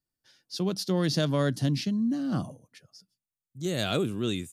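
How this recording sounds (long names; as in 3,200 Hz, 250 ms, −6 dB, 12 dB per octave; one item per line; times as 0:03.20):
background noise floor −92 dBFS
spectral slope −5.5 dB per octave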